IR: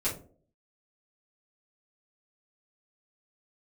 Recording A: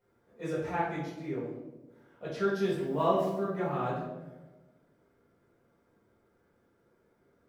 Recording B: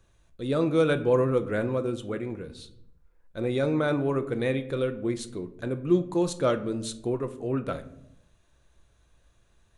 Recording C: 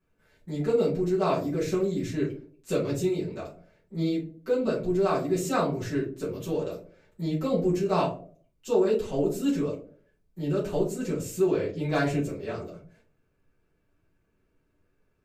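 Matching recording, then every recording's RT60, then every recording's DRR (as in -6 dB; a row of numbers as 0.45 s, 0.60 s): C; 1.2 s, 0.80 s, 0.50 s; -9.0 dB, 9.0 dB, -10.0 dB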